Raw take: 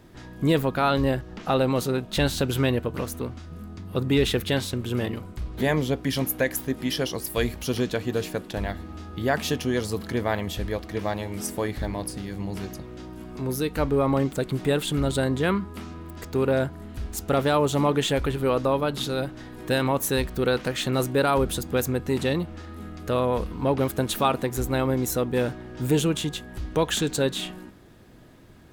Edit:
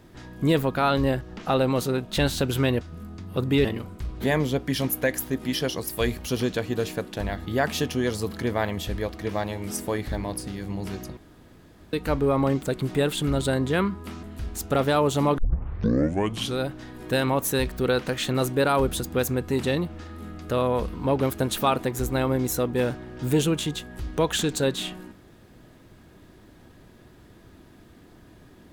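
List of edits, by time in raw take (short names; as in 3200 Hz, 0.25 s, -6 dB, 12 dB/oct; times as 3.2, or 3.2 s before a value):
2.81–3.4 cut
4.24–5.02 cut
8.83–9.16 cut
12.87–13.63 room tone
15.93–16.81 cut
17.96 tape start 1.21 s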